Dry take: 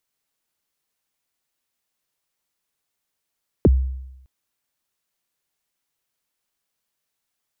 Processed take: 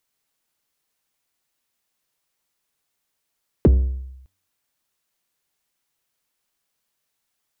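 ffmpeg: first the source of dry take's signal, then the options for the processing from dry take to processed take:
-f lavfi -i "aevalsrc='0.398*pow(10,-3*t/0.9)*sin(2*PI*(520*0.032/log(65/520)*(exp(log(65/520)*min(t,0.032)/0.032)-1)+65*max(t-0.032,0)))':d=0.61:s=44100"
-filter_complex "[0:a]bandreject=f=93.93:t=h:w=4,bandreject=f=187.86:t=h:w=4,bandreject=f=281.79:t=h:w=4,bandreject=f=375.72:t=h:w=4,bandreject=f=469.65:t=h:w=4,bandreject=f=563.58:t=h:w=4,bandreject=f=657.51:t=h:w=4,asplit=2[s0][s1];[s1]asoftclip=type=hard:threshold=0.0944,volume=0.376[s2];[s0][s2]amix=inputs=2:normalize=0"

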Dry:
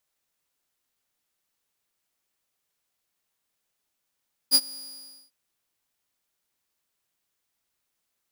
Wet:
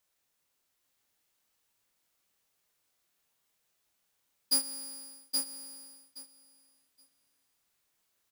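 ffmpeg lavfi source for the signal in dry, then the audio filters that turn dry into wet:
-f lavfi -i "aevalsrc='0.299*(2*mod(4870*t,1)-1)':d=0.798:s=44100,afade=t=in:d=0.04,afade=t=out:st=0.04:d=0.051:silence=0.0631,afade=t=out:st=0.22:d=0.578"
-filter_complex "[0:a]alimiter=limit=0.119:level=0:latency=1:release=110,asplit=2[s0][s1];[s1]adelay=26,volume=0.501[s2];[s0][s2]amix=inputs=2:normalize=0,aecho=1:1:822|1644|2466:0.631|0.0946|0.0142"

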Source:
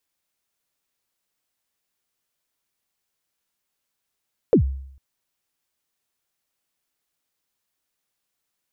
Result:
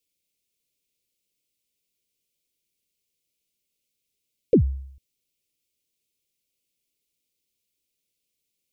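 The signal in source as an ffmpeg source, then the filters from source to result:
-f lavfi -i "aevalsrc='0.355*pow(10,-3*t/0.69)*sin(2*PI*(540*0.096/log(67/540)*(exp(log(67/540)*min(t,0.096)/0.096)-1)+67*max(t-0.096,0)))':d=0.45:s=44100"
-af "asuperstop=centerf=1100:order=12:qfactor=0.68"

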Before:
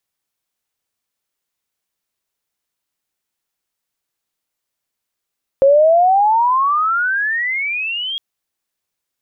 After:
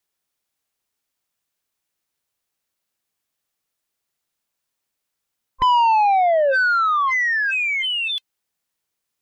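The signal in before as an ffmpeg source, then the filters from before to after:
-f lavfi -i "aevalsrc='pow(10,(-6.5-14*t/2.56)/20)*sin(2*PI*535*2.56/(31.5*log(2)/12)*(exp(31.5*log(2)/12*t/2.56)-1))':d=2.56:s=44100"
-af "afftfilt=real='real(if(between(b,1,1008),(2*floor((b-1)/24)+1)*24-b,b),0)':imag='imag(if(between(b,1,1008),(2*floor((b-1)/24)+1)*24-b,b),0)*if(between(b,1,1008),-1,1)':win_size=2048:overlap=0.75,asoftclip=type=tanh:threshold=0.224"

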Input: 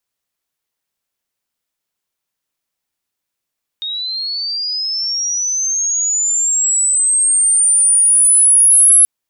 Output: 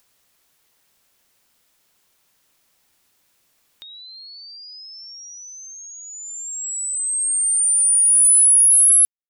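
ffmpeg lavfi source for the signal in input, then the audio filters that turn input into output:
-f lavfi -i "aevalsrc='pow(10,(-20+15*t/5.23)/20)*sin(2*PI*(3700*t+7300*t*t/(2*5.23)))':d=5.23:s=44100"
-af "agate=range=0.00158:threshold=0.282:ratio=16:detection=peak,acompressor=mode=upward:threshold=0.251:ratio=2.5,alimiter=limit=0.335:level=0:latency=1:release=207"

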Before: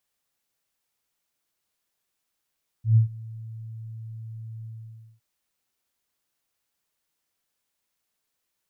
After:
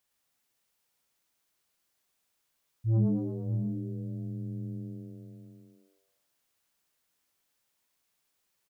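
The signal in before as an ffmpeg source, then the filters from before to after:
-f lavfi -i "aevalsrc='0.251*sin(2*PI*112*t)':d=2.361:s=44100,afade=t=in:d=0.124,afade=t=out:st=0.124:d=0.114:silence=0.0708,afade=t=out:st=1.81:d=0.551"
-filter_complex "[0:a]asplit=2[s0][s1];[s1]aecho=0:1:583:0.282[s2];[s0][s2]amix=inputs=2:normalize=0,asoftclip=type=tanh:threshold=0.075,asplit=2[s3][s4];[s4]asplit=6[s5][s6][s7][s8][s9][s10];[s5]adelay=113,afreqshift=94,volume=0.668[s11];[s6]adelay=226,afreqshift=188,volume=0.295[s12];[s7]adelay=339,afreqshift=282,volume=0.129[s13];[s8]adelay=452,afreqshift=376,volume=0.0569[s14];[s9]adelay=565,afreqshift=470,volume=0.0251[s15];[s10]adelay=678,afreqshift=564,volume=0.011[s16];[s11][s12][s13][s14][s15][s16]amix=inputs=6:normalize=0[s17];[s3][s17]amix=inputs=2:normalize=0"

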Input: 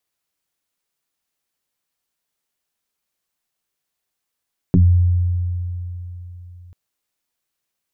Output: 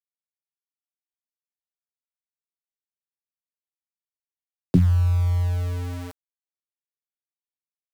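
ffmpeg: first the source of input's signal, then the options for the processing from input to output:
-f lavfi -i "aevalsrc='0.447*pow(10,-3*t/3.64)*sin(2*PI*88.5*t+2.8*pow(10,-3*t/0.25)*sin(2*PI*1.02*88.5*t))':d=1.99:s=44100"
-filter_complex "[0:a]acrossover=split=110|230|280[s0][s1][s2][s3];[s0]alimiter=limit=0.0891:level=0:latency=1[s4];[s4][s1][s2][s3]amix=inputs=4:normalize=0,aeval=exprs='val(0)*gte(abs(val(0)),0.0335)':c=same"

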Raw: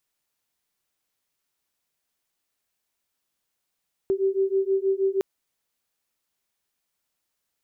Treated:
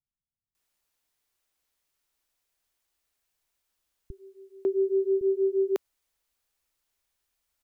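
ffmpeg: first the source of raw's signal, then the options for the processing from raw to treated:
-f lavfi -i "aevalsrc='0.0668*(sin(2*PI*384*t)+sin(2*PI*390.3*t))':d=1.11:s=44100"
-filter_complex "[0:a]asubboost=boost=4:cutoff=75,acrossover=split=190[s0][s1];[s1]adelay=550[s2];[s0][s2]amix=inputs=2:normalize=0"

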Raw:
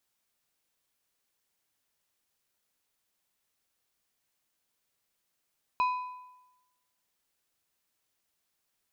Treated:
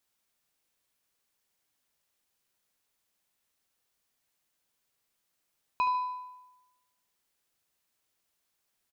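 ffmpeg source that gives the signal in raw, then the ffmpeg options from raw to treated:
-f lavfi -i "aevalsrc='0.0794*pow(10,-3*t/1.01)*sin(2*PI*1000*t)+0.0224*pow(10,-3*t/0.767)*sin(2*PI*2500*t)+0.00631*pow(10,-3*t/0.666)*sin(2*PI*4000*t)+0.00178*pow(10,-3*t/0.623)*sin(2*PI*5000*t)+0.000501*pow(10,-3*t/0.576)*sin(2*PI*6500*t)':d=1.55:s=44100"
-af "aecho=1:1:73|146|219|292:0.316|0.114|0.041|0.0148"

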